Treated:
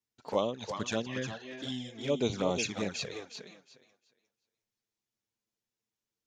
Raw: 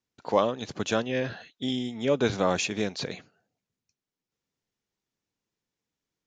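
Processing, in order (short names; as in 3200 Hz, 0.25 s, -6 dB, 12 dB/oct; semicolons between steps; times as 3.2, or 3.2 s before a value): thinning echo 0.357 s, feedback 22%, high-pass 170 Hz, level -7 dB; envelope flanger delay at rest 8.9 ms, full sweep at -20.5 dBFS; high shelf 4500 Hz +6 dB; gain -4.5 dB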